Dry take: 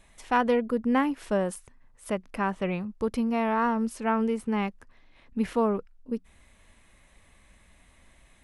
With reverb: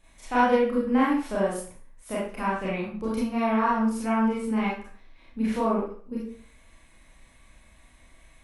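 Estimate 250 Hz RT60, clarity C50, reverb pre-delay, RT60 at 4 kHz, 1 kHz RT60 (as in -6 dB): 0.45 s, 1.5 dB, 23 ms, 0.40 s, 0.45 s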